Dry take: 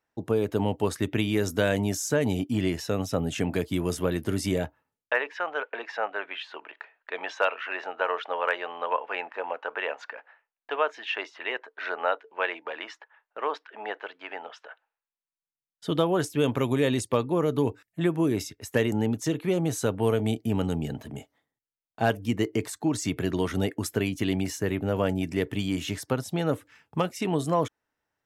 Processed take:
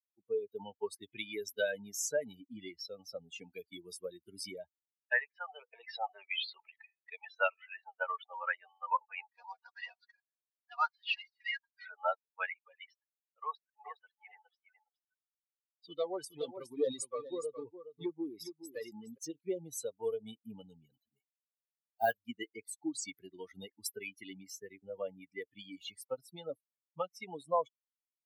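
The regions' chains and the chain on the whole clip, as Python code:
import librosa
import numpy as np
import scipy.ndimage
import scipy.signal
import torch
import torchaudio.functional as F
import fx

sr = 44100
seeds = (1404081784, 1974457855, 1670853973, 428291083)

y = fx.chain(x, sr, fx.peak_eq(hz=1500.0, db=-11.0, octaves=0.26),
    fx.env_flatten(amount_pct=50), at=(5.49, 7.16))
y = fx.chain(y, sr, fx.cvsd(bps=32000),
    fx.highpass(hz=650.0, slope=24),
    fx.comb(ms=4.2, depth=0.83), at=(9.3, 11.85))
y = fx.chain(y, sr, fx.clip_hard(threshold_db=-20.0),
    fx.echo_single(ms=416, db=-4.0), at=(13.43, 19.18))
y = fx.chain(y, sr, fx.block_float(bits=5),
    fx.doubler(ms=17.0, db=-10), at=(20.91, 22.13))
y = fx.bin_expand(y, sr, power=3.0)
y = scipy.signal.sosfilt(scipy.signal.butter(2, 500.0, 'highpass', fs=sr, output='sos'), y)
y = F.gain(torch.from_numpy(y), 1.0).numpy()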